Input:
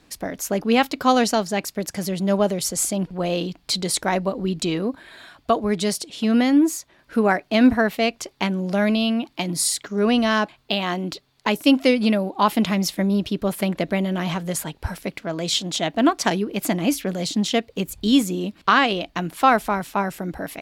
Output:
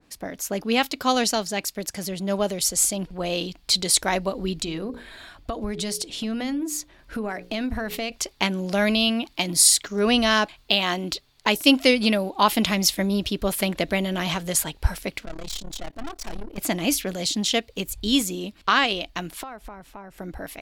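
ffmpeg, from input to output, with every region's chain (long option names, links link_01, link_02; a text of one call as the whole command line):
ffmpeg -i in.wav -filter_complex "[0:a]asettb=1/sr,asplit=3[link_01][link_02][link_03];[link_01]atrim=end=4.594[link_04];[link_02]atrim=start=4.59:end=8.12,asetpts=PTS-STARTPTS,afade=type=in:duration=0.004:curve=qsin,afade=type=out:start_time=3.526:duration=0.004:curve=qsin,bandreject=frequency=60:width_type=h:width=6,bandreject=frequency=120:width_type=h:width=6,bandreject=frequency=180:width_type=h:width=6,bandreject=frequency=240:width_type=h:width=6,bandreject=frequency=300:width_type=h:width=6,bandreject=frequency=360:width_type=h:width=6,bandreject=frequency=420:width_type=h:width=6,bandreject=frequency=480:width_type=h:width=6,bandreject=frequency=540:width_type=h:width=6,acompressor=threshold=-27dB:ratio=5:attack=3.2:release=140:knee=1:detection=peak,lowshelf=frequency=280:gain=6[link_05];[link_03]atrim=start=8.116[link_06];[link_04][link_05]acrossfade=duration=0.004:curve1=hsin:curve2=qsin[link_07];[link_07][link_06]acrossfade=duration=0.004:curve1=qsin:curve2=hsin,asettb=1/sr,asplit=3[link_08][link_09][link_10];[link_08]atrim=end=15.254[link_11];[link_09]atrim=start=15.25:end=16.58,asetpts=PTS-STARTPTS,afade=type=in:duration=0.004:curve=qsin,afade=type=out:start_time=1.326:duration=0.004:curve=qsin,equalizer=frequency=3000:width_type=o:width=1.2:gain=-4,tremolo=f=35:d=0.947,aeval=exprs='(tanh(35.5*val(0)+0.3)-tanh(0.3))/35.5':channel_layout=same[link_12];[link_10]atrim=start=16.576[link_13];[link_11][link_12]acrossfade=duration=0.004:curve1=hsin:curve2=qsin[link_14];[link_14][link_13]acrossfade=duration=0.004:curve1=qsin:curve2=hsin,asettb=1/sr,asplit=3[link_15][link_16][link_17];[link_15]atrim=end=19.434[link_18];[link_16]atrim=start=19.43:end=20.18,asetpts=PTS-STARTPTS,afade=type=in:duration=0.004:curve=qsin,afade=type=out:start_time=0.746:duration=0.004:curve=qsin,highshelf=frequency=2100:gain=-10.5,acompressor=threshold=-35dB:ratio=3:attack=3.2:release=140:knee=1:detection=peak[link_19];[link_17]atrim=start=20.176[link_20];[link_18][link_19]acrossfade=duration=0.004:curve1=hsin:curve2=qsin[link_21];[link_21][link_20]acrossfade=duration=0.004:curve1=qsin:curve2=hsin,asubboost=boost=5:cutoff=63,dynaudnorm=framelen=350:gausssize=21:maxgain=11.5dB,adynamicequalizer=threshold=0.0178:dfrequency=2200:dqfactor=0.7:tfrequency=2200:tqfactor=0.7:attack=5:release=100:ratio=0.375:range=3.5:mode=boostabove:tftype=highshelf,volume=-4.5dB" out.wav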